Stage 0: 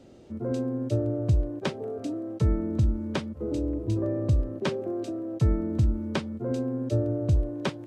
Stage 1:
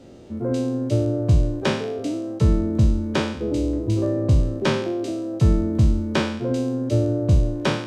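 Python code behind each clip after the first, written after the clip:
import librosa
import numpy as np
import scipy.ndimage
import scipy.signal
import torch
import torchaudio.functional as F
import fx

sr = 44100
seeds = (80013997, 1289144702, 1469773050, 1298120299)

y = fx.spec_trails(x, sr, decay_s=0.63)
y = y * librosa.db_to_amplitude(5.0)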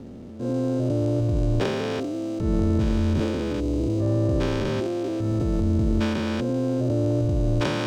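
y = fx.spec_steps(x, sr, hold_ms=400)
y = fx.backlash(y, sr, play_db=-50.5)
y = fx.transient(y, sr, attack_db=-6, sustain_db=7)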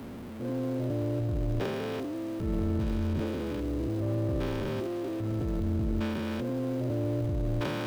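y = x + 0.5 * 10.0 ** (-31.0 / 20.0) * np.sign(x)
y = fx.peak_eq(y, sr, hz=6500.0, db=-5.5, octaves=1.3)
y = y * librosa.db_to_amplitude(-8.5)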